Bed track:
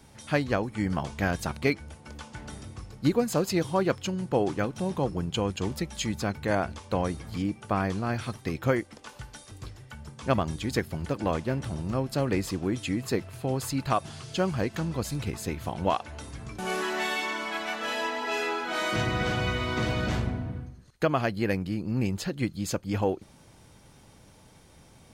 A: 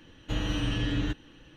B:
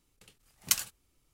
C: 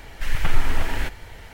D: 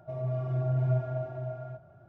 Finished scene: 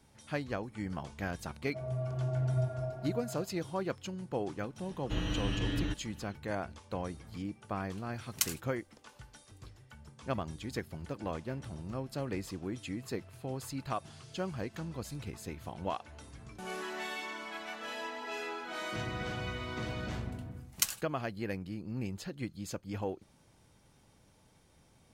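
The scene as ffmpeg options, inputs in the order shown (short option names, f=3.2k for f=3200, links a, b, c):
-filter_complex "[2:a]asplit=2[a][b];[0:a]volume=-10dB[c];[4:a]atrim=end=2.08,asetpts=PTS-STARTPTS,volume=-4dB,afade=t=in:d=0.004:c=hsin,afade=t=out:st=2.076:d=0.004:c=hsin,adelay=1670[d];[1:a]atrim=end=1.56,asetpts=PTS-STARTPTS,volume=-4.5dB,afade=t=in:d=0.004:c=hsin,afade=t=out:st=1.556:d=0.004:c=hsin,adelay=212121S[e];[a]atrim=end=1.33,asetpts=PTS-STARTPTS,volume=-4.5dB,afade=t=in:d=0.004:c=hsin,afade=t=out:st=1.326:d=0.004:c=hsin,adelay=339570S[f];[b]atrim=end=1.33,asetpts=PTS-STARTPTS,volume=-3.5dB,afade=t=in:d=0.004:c=hsin,afade=t=out:st=1.326:d=0.004:c=hsin,adelay=20110[g];[c][d][e][f][g]amix=inputs=5:normalize=0"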